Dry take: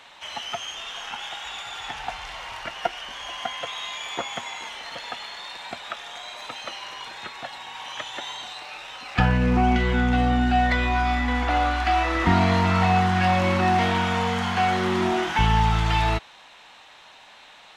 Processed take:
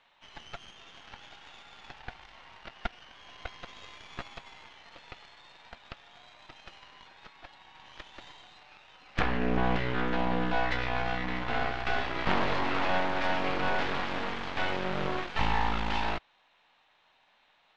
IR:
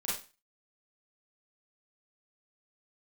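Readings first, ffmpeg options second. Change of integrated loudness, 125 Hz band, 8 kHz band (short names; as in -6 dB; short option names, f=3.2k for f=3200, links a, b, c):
-7.0 dB, -14.0 dB, under -15 dB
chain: -af "aeval=exprs='0.531*(cos(1*acos(clip(val(0)/0.531,-1,1)))-cos(1*PI/2))+0.211*(cos(3*acos(clip(val(0)/0.531,-1,1)))-cos(3*PI/2))+0.0473*(cos(5*acos(clip(val(0)/0.531,-1,1)))-cos(5*PI/2))+0.106*(cos(6*acos(clip(val(0)/0.531,-1,1)))-cos(6*PI/2))':c=same,lowpass=4k,volume=-5dB"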